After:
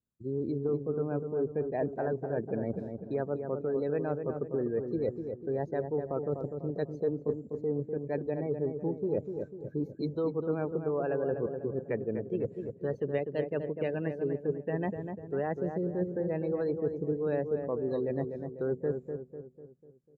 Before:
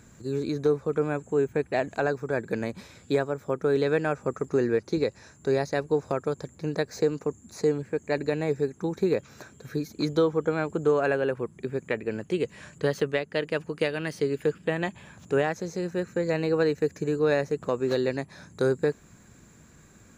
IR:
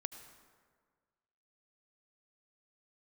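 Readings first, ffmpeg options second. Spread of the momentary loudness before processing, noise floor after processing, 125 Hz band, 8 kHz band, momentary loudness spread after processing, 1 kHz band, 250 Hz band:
8 LU, -54 dBFS, -3.0 dB, n/a, 5 LU, -7.5 dB, -4.0 dB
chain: -filter_complex "[0:a]acrossover=split=1000[a][b];[a]acontrast=84[c];[c][b]amix=inputs=2:normalize=0,agate=range=-17dB:threshold=-42dB:ratio=16:detection=peak,adynamicequalizer=threshold=0.00708:dfrequency=1500:dqfactor=3.4:tfrequency=1500:tqfactor=3.4:attack=5:release=100:ratio=0.375:range=2:mode=cutabove:tftype=bell,afftdn=nr=26:nf=-30,areverse,acompressor=threshold=-28dB:ratio=5,areverse,asplit=2[d][e];[e]adelay=248,lowpass=f=1.3k:p=1,volume=-6dB,asplit=2[f][g];[g]adelay=248,lowpass=f=1.3k:p=1,volume=0.5,asplit=2[h][i];[i]adelay=248,lowpass=f=1.3k:p=1,volume=0.5,asplit=2[j][k];[k]adelay=248,lowpass=f=1.3k:p=1,volume=0.5,asplit=2[l][m];[m]adelay=248,lowpass=f=1.3k:p=1,volume=0.5,asplit=2[n][o];[o]adelay=248,lowpass=f=1.3k:p=1,volume=0.5[p];[d][f][h][j][l][n][p]amix=inputs=7:normalize=0,volume=-2dB"

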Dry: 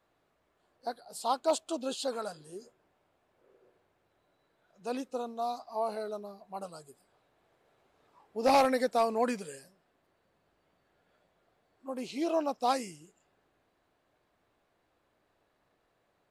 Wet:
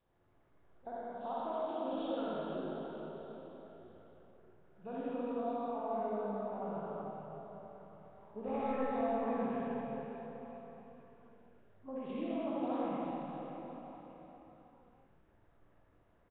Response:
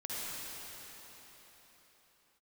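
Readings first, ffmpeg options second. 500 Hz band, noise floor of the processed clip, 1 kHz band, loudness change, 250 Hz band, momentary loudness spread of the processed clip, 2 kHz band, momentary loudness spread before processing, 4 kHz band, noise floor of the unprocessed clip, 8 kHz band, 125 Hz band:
-5.0 dB, -69 dBFS, -7.0 dB, -7.0 dB, -1.0 dB, 19 LU, -9.5 dB, 19 LU, under -10 dB, -75 dBFS, under -35 dB, +5.0 dB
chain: -filter_complex "[0:a]aemphasis=mode=reproduction:type=bsi,acompressor=threshold=-33dB:ratio=6,aecho=1:1:19|50|63:0.251|0.447|0.2[a];[1:a]atrim=start_sample=2205[b];[a][b]afir=irnorm=-1:irlink=0,volume=-3.5dB" -ar 8000 -c:a nellymoser

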